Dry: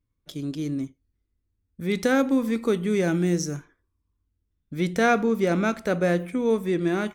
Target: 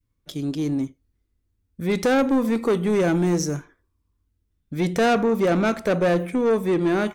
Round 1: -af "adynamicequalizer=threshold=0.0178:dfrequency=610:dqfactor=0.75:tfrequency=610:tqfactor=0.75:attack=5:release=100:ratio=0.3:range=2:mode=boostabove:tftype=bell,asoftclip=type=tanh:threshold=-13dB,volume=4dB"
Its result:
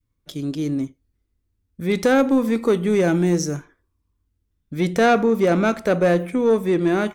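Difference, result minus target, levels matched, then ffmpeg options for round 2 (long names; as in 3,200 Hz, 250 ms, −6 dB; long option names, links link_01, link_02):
soft clipping: distortion −7 dB
-af "adynamicequalizer=threshold=0.0178:dfrequency=610:dqfactor=0.75:tfrequency=610:tqfactor=0.75:attack=5:release=100:ratio=0.3:range=2:mode=boostabove:tftype=bell,asoftclip=type=tanh:threshold=-19dB,volume=4dB"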